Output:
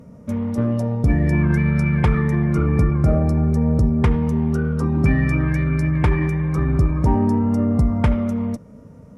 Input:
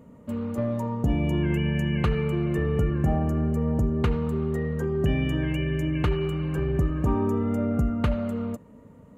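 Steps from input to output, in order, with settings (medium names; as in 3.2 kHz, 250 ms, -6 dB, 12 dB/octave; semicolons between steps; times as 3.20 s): Chebyshev shaper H 6 -28 dB, 8 -27 dB, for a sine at -11.5 dBFS; formant shift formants -4 st; trim +7 dB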